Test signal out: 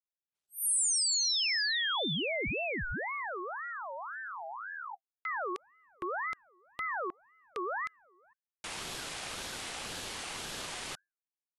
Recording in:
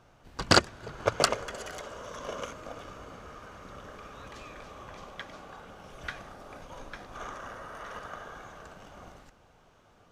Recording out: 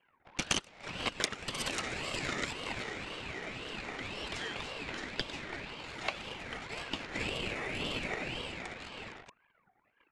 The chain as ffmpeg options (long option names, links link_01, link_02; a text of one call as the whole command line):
ffmpeg -i in.wav -af "anlmdn=0.001,aresample=22050,aresample=44100,equalizer=frequency=2000:width=0.41:gain=14.5,acompressor=threshold=-27dB:ratio=10,afreqshift=-49,aemphasis=mode=production:type=50fm,aeval=exprs='val(0)*sin(2*PI*1200*n/s+1200*0.4/1.9*sin(2*PI*1.9*n/s))':channel_layout=same,volume=-1.5dB" out.wav